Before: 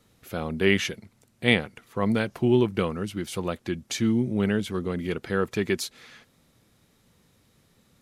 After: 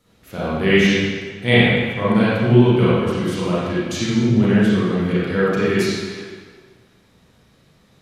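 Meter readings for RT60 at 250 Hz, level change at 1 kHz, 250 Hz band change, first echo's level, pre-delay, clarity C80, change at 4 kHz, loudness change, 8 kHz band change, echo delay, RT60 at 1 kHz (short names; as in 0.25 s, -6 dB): 1.5 s, +9.0 dB, +9.0 dB, none, 32 ms, -1.0 dB, +7.5 dB, +9.0 dB, +3.0 dB, none, 1.6 s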